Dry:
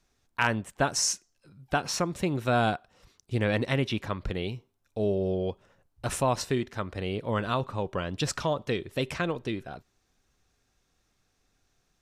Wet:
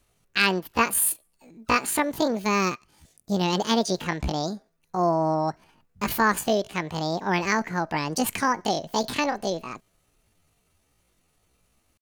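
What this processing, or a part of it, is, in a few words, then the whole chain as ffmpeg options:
chipmunk voice: -filter_complex "[0:a]asettb=1/sr,asplit=3[s0][s1][s2];[s0]atrim=end=2.334[s3];[s1]atrim=start=2.33:end=3.62,asetpts=PTS-STARTPTS,afade=t=in:d=0.004:c=qsin,afade=t=out:st=1.286:d=0.004:c=qsin,equalizer=f=670:t=o:w=2.5:g=-5.5[s4];[s2]atrim=start=3.616[s5];[s3][s4]acrossfade=d=0.004:c1=hsin:c2=qsin[s6];[s6][s5]acrossfade=d=0.004:c1=qsin:c2=hsin,asetrate=74167,aresample=44100,atempo=0.594604,volume=1.68"

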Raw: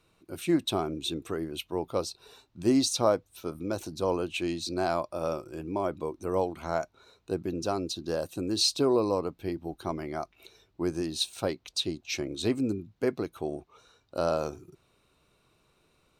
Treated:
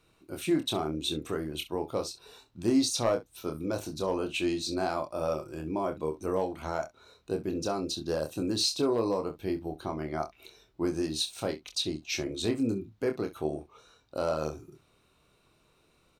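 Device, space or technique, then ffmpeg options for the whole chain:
clipper into limiter: -filter_complex "[0:a]asettb=1/sr,asplit=3[s0][s1][s2];[s0]atrim=end=9.694[s3];[s1]atrim=start=9.69:end=10.19,asetpts=PTS-STARTPTS,afade=t=in:d=0.004:c=qsin,afade=t=out:st=0.496:d=0.004:c=qsin,highshelf=f=5600:g=-6[s4];[s2]atrim=start=10.186[s5];[s3][s4]acrossfade=d=0.004:c1=hsin:c2=qsin[s6];[s6][s5]acrossfade=d=0.004:c1=qsin:c2=hsin,asoftclip=type=hard:threshold=0.158,alimiter=limit=0.106:level=0:latency=1:release=232,aecho=1:1:26|65:0.531|0.158"

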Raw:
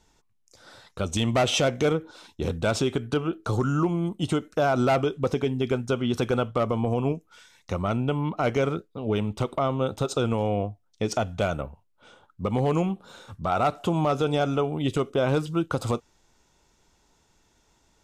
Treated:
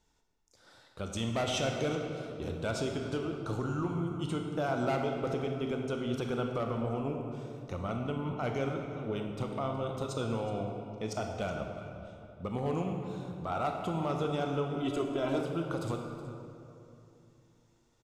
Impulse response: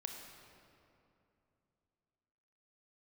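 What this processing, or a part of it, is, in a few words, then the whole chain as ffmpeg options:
cave: -filter_complex "[0:a]aecho=1:1:369:0.133[s0];[1:a]atrim=start_sample=2205[s1];[s0][s1]afir=irnorm=-1:irlink=0,asettb=1/sr,asplit=3[s2][s3][s4];[s2]atrim=end=14.824[s5];[s3]atrim=start=14.82:end=15.41,asetpts=PTS-STARTPTS,afade=t=in:d=0.004:c=qsin,afade=t=out:st=0.586:d=0.004:c=qsin,aecho=1:1:3:0.71,atrim=end_sample=26019[s6];[s4]atrim=start=15.406[s7];[s5][s6]acrossfade=d=0.004:c1=hsin:c2=qsin[s8];[s8][s7]acrossfade=d=0.004:c1=qsin:c2=hsin,volume=0.473"

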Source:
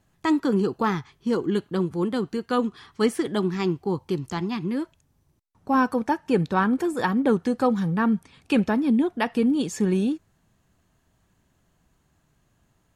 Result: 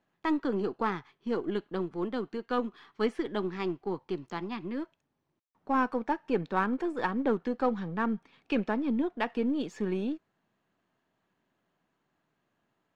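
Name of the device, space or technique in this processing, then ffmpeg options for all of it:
crystal radio: -filter_complex "[0:a]highpass=240,lowpass=3400,aeval=exprs='if(lt(val(0),0),0.708*val(0),val(0))':c=same,asettb=1/sr,asplit=3[s0][s1][s2];[s0]atrim=end=7.394[s3];[s1]atrim=start=7.39:end=8.58,asetpts=PTS-STARTPTS,afade=t=in:d=0.004:c=qsin,afade=t=out:st=1.186:d=0.004:c=qsin,lowpass=8700[s4];[s2]atrim=start=8.576[s5];[s3][s4]acrossfade=d=0.004:c1=hsin:c2=qsin[s6];[s6][s5]acrossfade=d=0.004:c1=qsin:c2=hsin,volume=0.596"

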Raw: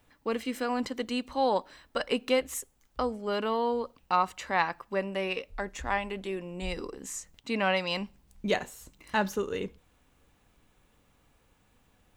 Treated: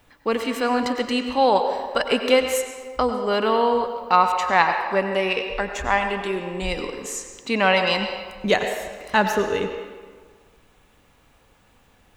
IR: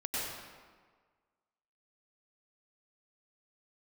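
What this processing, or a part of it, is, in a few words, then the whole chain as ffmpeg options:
filtered reverb send: -filter_complex "[0:a]asplit=2[s0][s1];[s1]highpass=350,lowpass=6900[s2];[1:a]atrim=start_sample=2205[s3];[s2][s3]afir=irnorm=-1:irlink=0,volume=0.398[s4];[s0][s4]amix=inputs=2:normalize=0,volume=2.24"

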